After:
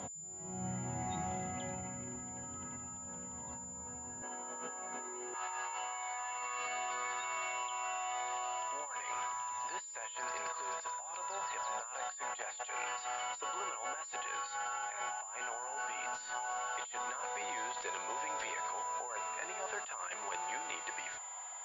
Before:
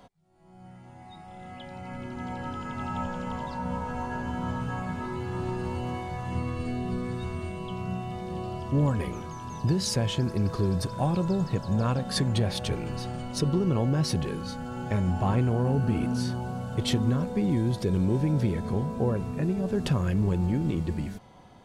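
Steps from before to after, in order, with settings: high-pass 60 Hz 24 dB/octave, from 4.22 s 360 Hz, from 5.34 s 850 Hz; compressor with a negative ratio -46 dBFS, ratio -1; class-D stage that switches slowly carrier 7.1 kHz; trim +3 dB

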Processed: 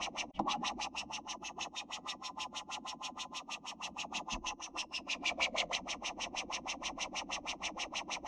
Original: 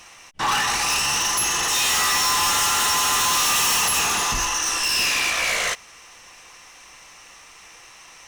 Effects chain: high-pass 74 Hz 6 dB/octave; peaking EQ 6.5 kHz +8 dB 0.52 oct; static phaser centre 430 Hz, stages 6; compressor with a negative ratio -33 dBFS, ratio -1; LFO low-pass sine 6.3 Hz 240–3400 Hz; dynamic bell 1.3 kHz, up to -6 dB, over -48 dBFS, Q 1.1

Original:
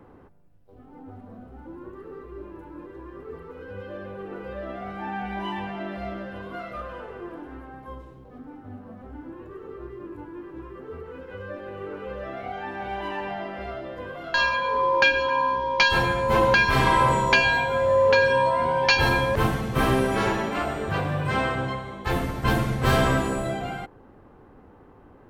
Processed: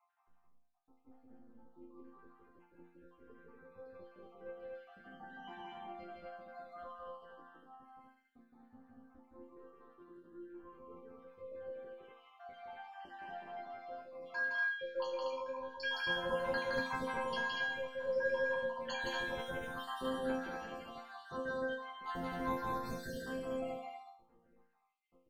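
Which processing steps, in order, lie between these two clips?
random holes in the spectrogram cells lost 73%; chord resonator F3 sus4, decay 0.47 s; loudspeakers at several distances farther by 57 m -2 dB, 82 m -3 dB; trim +2 dB

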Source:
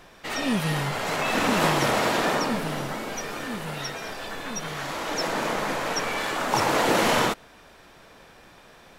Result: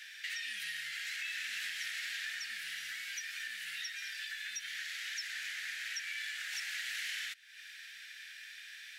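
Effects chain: elliptic high-pass 1.7 kHz, stop band 40 dB; treble shelf 4.7 kHz -6 dB; compression 4:1, threshold -49 dBFS, peak gain reduction 18.5 dB; trim +8 dB

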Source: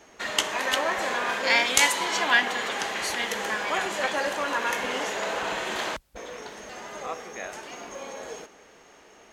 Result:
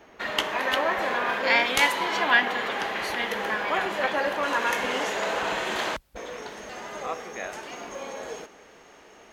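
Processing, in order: peaking EQ 7.6 kHz -14.5 dB 1.3 oct, from 4.43 s -3.5 dB; trim +2 dB

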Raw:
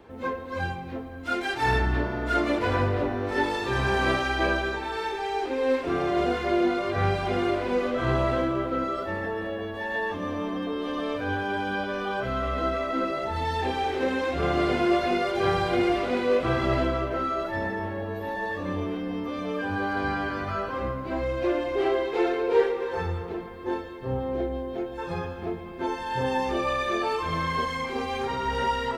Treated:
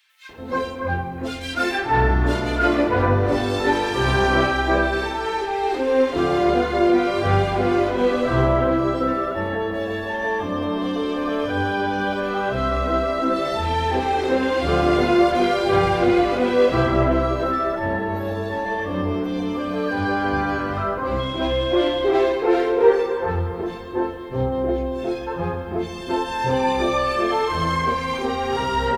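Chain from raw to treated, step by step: 21.19–22.01 s: whistle 3.3 kHz -37 dBFS; bands offset in time highs, lows 290 ms, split 2.2 kHz; trim +6.5 dB

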